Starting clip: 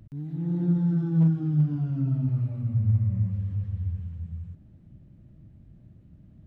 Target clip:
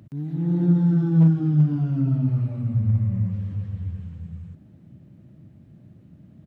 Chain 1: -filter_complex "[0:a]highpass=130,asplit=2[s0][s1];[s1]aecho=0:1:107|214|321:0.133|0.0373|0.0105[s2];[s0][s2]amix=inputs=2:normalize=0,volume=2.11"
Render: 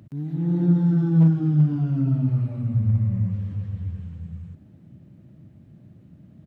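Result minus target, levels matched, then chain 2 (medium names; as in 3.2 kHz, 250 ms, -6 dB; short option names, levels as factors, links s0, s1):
echo-to-direct +10 dB
-filter_complex "[0:a]highpass=130,asplit=2[s0][s1];[s1]aecho=0:1:107|214:0.0422|0.0118[s2];[s0][s2]amix=inputs=2:normalize=0,volume=2.11"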